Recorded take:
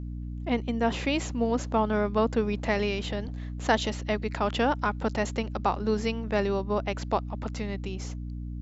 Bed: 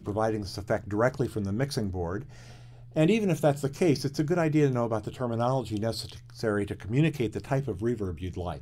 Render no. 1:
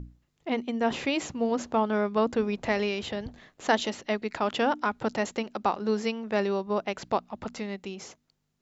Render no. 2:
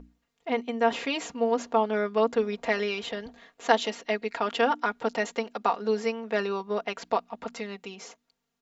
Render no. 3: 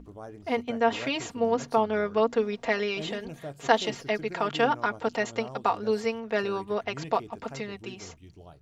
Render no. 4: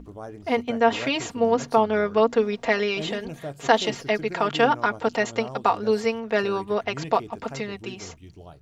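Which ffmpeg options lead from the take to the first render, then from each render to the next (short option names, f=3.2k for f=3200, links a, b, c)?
-af "bandreject=f=60:t=h:w=6,bandreject=f=120:t=h:w=6,bandreject=f=180:t=h:w=6,bandreject=f=240:t=h:w=6,bandreject=f=300:t=h:w=6"
-af "bass=f=250:g=-13,treble=f=4k:g=-3,aecho=1:1:4.3:0.71"
-filter_complex "[1:a]volume=-15.5dB[a];[0:a][a]amix=inputs=2:normalize=0"
-af "volume=4.5dB,alimiter=limit=-3dB:level=0:latency=1"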